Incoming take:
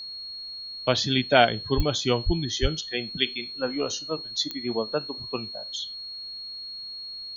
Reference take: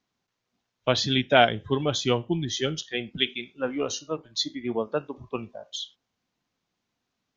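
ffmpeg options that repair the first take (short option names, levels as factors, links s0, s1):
-filter_complex "[0:a]adeclick=t=4,bandreject=f=4300:w=30,asplit=3[s0][s1][s2];[s0]afade=t=out:st=1.76:d=0.02[s3];[s1]highpass=f=140:w=0.5412,highpass=f=140:w=1.3066,afade=t=in:st=1.76:d=0.02,afade=t=out:st=1.88:d=0.02[s4];[s2]afade=t=in:st=1.88:d=0.02[s5];[s3][s4][s5]amix=inputs=3:normalize=0,asplit=3[s6][s7][s8];[s6]afade=t=out:st=2.25:d=0.02[s9];[s7]highpass=f=140:w=0.5412,highpass=f=140:w=1.3066,afade=t=in:st=2.25:d=0.02,afade=t=out:st=2.37:d=0.02[s10];[s8]afade=t=in:st=2.37:d=0.02[s11];[s9][s10][s11]amix=inputs=3:normalize=0,asplit=3[s12][s13][s14];[s12]afade=t=out:st=2.61:d=0.02[s15];[s13]highpass=f=140:w=0.5412,highpass=f=140:w=1.3066,afade=t=in:st=2.61:d=0.02,afade=t=out:st=2.73:d=0.02[s16];[s14]afade=t=in:st=2.73:d=0.02[s17];[s15][s16][s17]amix=inputs=3:normalize=0,agate=range=0.0891:threshold=0.0316"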